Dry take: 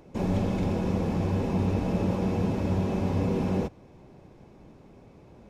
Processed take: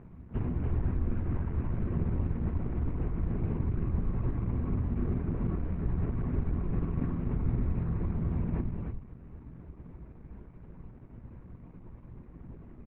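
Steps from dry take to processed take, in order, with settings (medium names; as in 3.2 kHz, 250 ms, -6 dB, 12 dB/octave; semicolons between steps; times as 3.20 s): octave divider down 2 oct, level -3 dB; low-pass 5.2 kHz 24 dB/octave; hum notches 50/100/150/200/250/300/350/400/450/500 Hz; comb 7.2 ms, depth 44%; in parallel at -0.5 dB: compressor with a negative ratio -32 dBFS, ratio -0.5; on the sum: delay 125 ms -3.5 dB; speed mistake 78 rpm record played at 33 rpm; trim -6.5 dB; Opus 8 kbps 48 kHz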